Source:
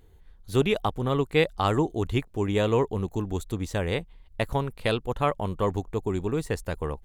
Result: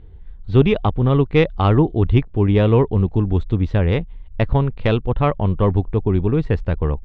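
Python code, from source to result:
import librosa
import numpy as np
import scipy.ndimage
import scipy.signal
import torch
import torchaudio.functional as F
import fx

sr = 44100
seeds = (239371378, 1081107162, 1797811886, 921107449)

y = fx.tracing_dist(x, sr, depth_ms=0.036)
y = scipy.signal.sosfilt(scipy.signal.butter(4, 3600.0, 'lowpass', fs=sr, output='sos'), y)
y = fx.low_shelf(y, sr, hz=260.0, db=12.0)
y = y * 10.0 ** (3.5 / 20.0)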